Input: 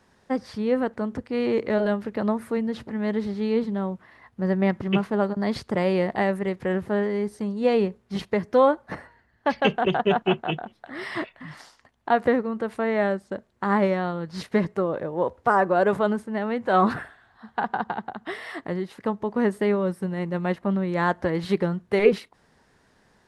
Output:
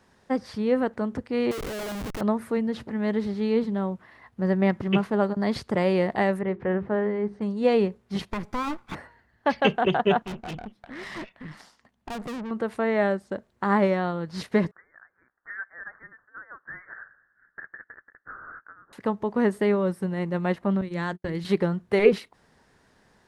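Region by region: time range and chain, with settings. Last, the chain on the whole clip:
0:01.51–0:02.21: low-shelf EQ 160 Hz −10.5 dB + downward compressor 4 to 1, threshold −28 dBFS + comparator with hysteresis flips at −39.5 dBFS
0:06.41–0:07.42: low-pass filter 2,000 Hz + mains-hum notches 50/100/150/200/250/300/350/400/450 Hz
0:08.32–0:08.95: lower of the sound and its delayed copy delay 0.84 ms + downward compressor 3 to 1, threshold −25 dBFS
0:10.25–0:12.51: parametric band 200 Hz +10.5 dB 0.62 octaves + tube saturation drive 32 dB, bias 0.75
0:14.71–0:18.93: Butterworth high-pass 1,600 Hz 72 dB per octave + spectral tilt −3.5 dB per octave + voice inversion scrambler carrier 3,300 Hz
0:20.81–0:21.45: mains-hum notches 60/120/180/240/300/360/420 Hz + noise gate −32 dBFS, range −42 dB + parametric band 810 Hz −10.5 dB 2.4 octaves
whole clip: no processing

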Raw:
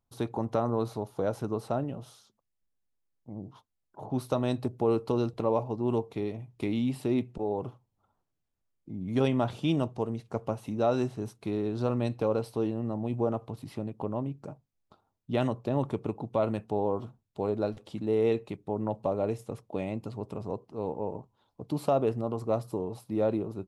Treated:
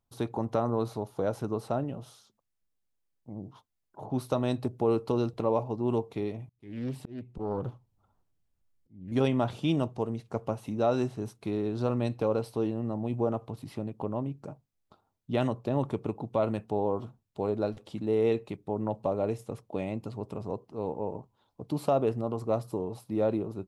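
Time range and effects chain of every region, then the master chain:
0:06.49–0:09.12: low-shelf EQ 150 Hz +9 dB + volume swells 621 ms + highs frequency-modulated by the lows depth 0.55 ms
whole clip: no processing

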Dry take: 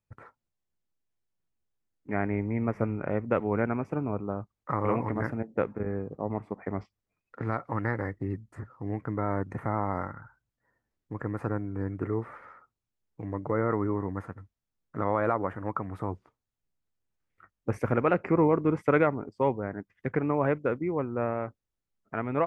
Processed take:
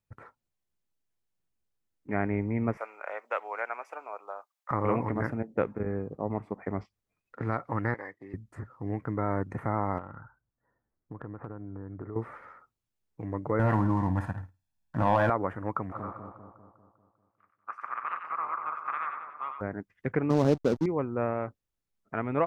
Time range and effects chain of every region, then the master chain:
0:02.77–0:04.71: high-pass filter 620 Hz 24 dB per octave + spectral tilt +1.5 dB per octave
0:07.94–0:08.34: high-pass filter 1,100 Hz 6 dB per octave + high-frequency loss of the air 54 metres + notch comb filter 1,400 Hz
0:09.98–0:12.16: low-pass filter 1,600 Hz 24 dB per octave + downward compressor 5 to 1, threshold −36 dBFS
0:13.59–0:15.30: comb filter 1.2 ms, depth 82% + flutter between parallel walls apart 9.3 metres, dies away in 0.28 s + leveller curve on the samples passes 1
0:15.91–0:19.60: ceiling on every frequency bin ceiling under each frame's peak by 30 dB + resonant band-pass 1,200 Hz, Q 8.9 + echo with a time of its own for lows and highs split 1,100 Hz, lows 198 ms, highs 93 ms, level −6 dB
0:20.30–0:20.86: variable-slope delta modulation 32 kbit/s + drawn EQ curve 110 Hz 0 dB, 190 Hz +10 dB, 2,100 Hz −8 dB, 4,100 Hz +5 dB + slack as between gear wheels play −26 dBFS
whole clip: no processing

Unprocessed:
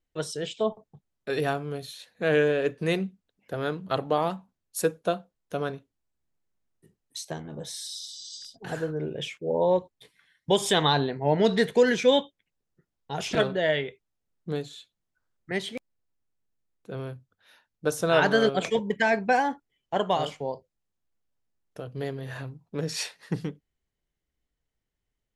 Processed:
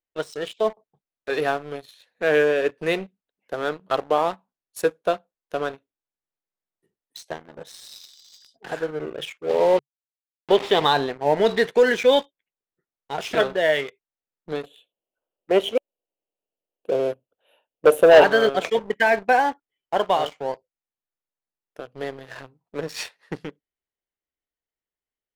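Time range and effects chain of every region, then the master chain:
0:09.49–0:10.85: hold until the input has moved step −27 dBFS + loudspeaker in its box 140–4,400 Hz, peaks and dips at 140 Hz +9 dB, 420 Hz +5 dB, 1,500 Hz −9 dB
0:14.63–0:18.24: drawn EQ curve 140 Hz 0 dB, 570 Hz +15 dB, 1,300 Hz −4 dB, 2,000 Hz −8 dB, 2,900 Hz +11 dB, 5,000 Hz −21 dB, 11,000 Hz +8 dB + saturating transformer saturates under 960 Hz
whole clip: bass and treble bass −14 dB, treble −8 dB; leveller curve on the samples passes 2; level −2 dB

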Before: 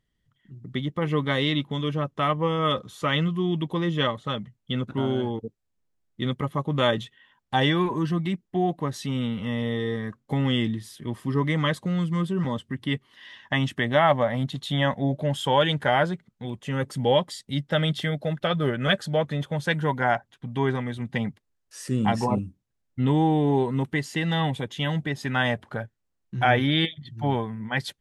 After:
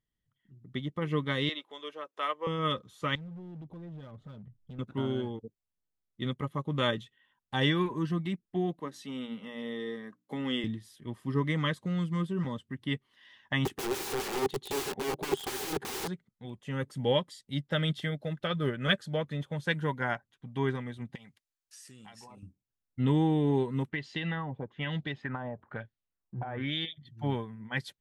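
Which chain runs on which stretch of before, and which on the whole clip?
0:01.49–0:02.47: high-pass filter 400 Hz 24 dB per octave + upward compression, threshold −39 dBFS
0:03.15–0:04.79: spectral tilt −4 dB per octave + downward compressor 5 to 1, threshold −32 dBFS + hard clipping −30.5 dBFS
0:08.80–0:10.64: high-pass filter 190 Hz 24 dB per octave + mains-hum notches 60/120/180/240/300 Hz
0:13.65–0:16.08: notch filter 5,500 Hz, Q 22 + wrap-around overflow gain 26 dB + hollow resonant body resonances 390/780 Hz, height 17 dB, ringing for 35 ms
0:21.15–0:22.43: tilt shelving filter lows −9 dB, about 1,200 Hz + downward compressor 5 to 1, threshold −37 dBFS
0:23.89–0:26.93: auto-filter low-pass sine 1.1 Hz 750–4,100 Hz + downward compressor 5 to 1, threshold −22 dBFS
whole clip: dynamic equaliser 730 Hz, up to −8 dB, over −40 dBFS, Q 2.6; expander for the loud parts 1.5 to 1, over −36 dBFS; level −3 dB

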